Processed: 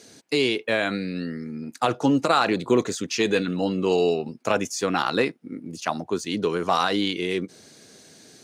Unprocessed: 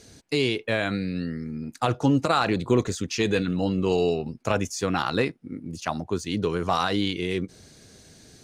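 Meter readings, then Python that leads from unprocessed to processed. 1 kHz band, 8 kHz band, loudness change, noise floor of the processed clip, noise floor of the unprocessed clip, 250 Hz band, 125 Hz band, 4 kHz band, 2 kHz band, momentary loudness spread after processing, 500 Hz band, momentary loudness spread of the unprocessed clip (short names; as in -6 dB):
+2.5 dB, +2.5 dB, +1.5 dB, -52 dBFS, -53 dBFS, +0.5 dB, -5.0 dB, +2.5 dB, +2.5 dB, 10 LU, +2.5 dB, 9 LU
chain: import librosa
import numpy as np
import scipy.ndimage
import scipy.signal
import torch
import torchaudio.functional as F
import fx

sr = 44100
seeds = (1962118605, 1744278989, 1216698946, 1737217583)

y = scipy.signal.sosfilt(scipy.signal.butter(2, 210.0, 'highpass', fs=sr, output='sos'), x)
y = y * librosa.db_to_amplitude(2.5)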